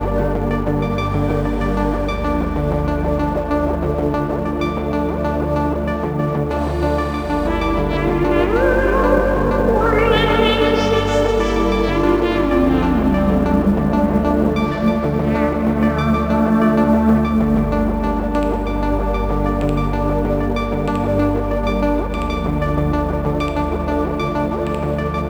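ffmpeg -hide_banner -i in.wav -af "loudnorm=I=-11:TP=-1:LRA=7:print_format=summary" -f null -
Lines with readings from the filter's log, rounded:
Input Integrated:    -18.0 LUFS
Input True Peak:      -1.6 dBTP
Input LRA:             4.3 LU
Input Threshold:     -28.0 LUFS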